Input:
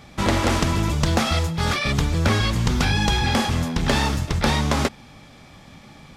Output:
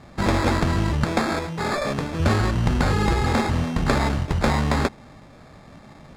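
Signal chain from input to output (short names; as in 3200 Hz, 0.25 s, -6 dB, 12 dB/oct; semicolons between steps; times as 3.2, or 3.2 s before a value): 1.04–2.2 HPF 180 Hz 12 dB/oct; sample-and-hold 15×; air absorption 57 m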